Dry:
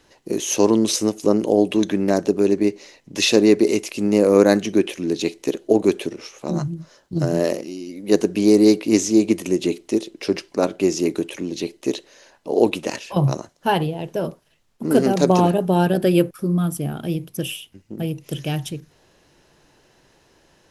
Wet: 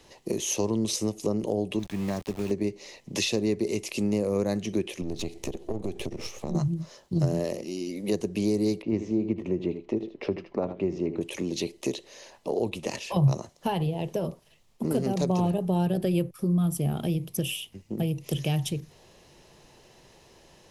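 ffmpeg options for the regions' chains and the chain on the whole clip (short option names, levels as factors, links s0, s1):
-filter_complex "[0:a]asettb=1/sr,asplit=3[s0][s1][s2];[s0]atrim=end=1.794[s3];[s1]atrim=start=1.79:end=2.51,asetpts=PTS-STARTPTS,afade=t=in:d=0.004:c=qsin,afade=t=out:st=0.716:d=0.004:c=qsin,lowpass=f=2100:p=1,equalizer=f=440:t=o:w=1.8:g=-14,aeval=exprs='val(0)*gte(abs(val(0)),0.0178)':c=same[s4];[s2]atrim=start=2.506[s5];[s3][s4]acrossfade=d=0.004:c1=hsin:c2=qsin[s6];[s6][s5]acrossfade=d=0.004:c1=qsin:c2=hsin,asettb=1/sr,asplit=3[s7][s8][s9];[s7]atrim=end=5.014[s10];[s8]atrim=start=5.01:end=6.55,asetpts=PTS-STARTPTS,afade=t=in:d=0.004:c=qsin,afade=t=out:st=1.536:d=0.004:c=qsin,aeval=exprs='if(lt(val(0),0),0.447*val(0),val(0))':c=same,lowshelf=f=290:g=10,acompressor=threshold=0.0316:ratio=4:attack=3.2:release=140:knee=1:detection=peak[s11];[s9]atrim=start=6.546[s12];[s10][s11]acrossfade=d=0.004:c1=hsin:c2=qsin[s13];[s13][s12]acrossfade=d=0.004:c1=qsin:c2=hsin,asettb=1/sr,asplit=3[s14][s15][s16];[s14]atrim=end=8.824[s17];[s15]atrim=start=8.82:end=11.21,asetpts=PTS-STARTPTS,afade=t=in:d=0.004:c=qsin,afade=t=out:st=2.386:d=0.004:c=qsin,lowpass=1700,aecho=1:1:78:0.251,atrim=end_sample=105399[s18];[s16]atrim=start=11.206[s19];[s17][s18]acrossfade=d=0.004:c1=hsin:c2=qsin[s20];[s20][s19]acrossfade=d=0.004:c1=qsin:c2=hsin,equalizer=f=290:t=o:w=0.2:g=-7.5,acrossover=split=130[s21][s22];[s22]acompressor=threshold=0.0316:ratio=4[s23];[s21][s23]amix=inputs=2:normalize=0,equalizer=f=1500:t=o:w=0.39:g=-9,volume=1.33"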